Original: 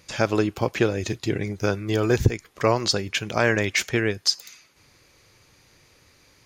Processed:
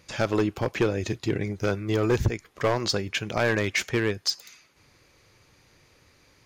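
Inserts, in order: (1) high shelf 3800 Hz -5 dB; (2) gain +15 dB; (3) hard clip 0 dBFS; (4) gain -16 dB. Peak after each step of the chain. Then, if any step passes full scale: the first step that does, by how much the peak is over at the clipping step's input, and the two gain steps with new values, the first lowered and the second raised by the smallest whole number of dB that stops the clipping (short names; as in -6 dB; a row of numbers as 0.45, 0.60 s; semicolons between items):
-5.5, +9.5, 0.0, -16.0 dBFS; step 2, 9.5 dB; step 2 +5 dB, step 4 -6 dB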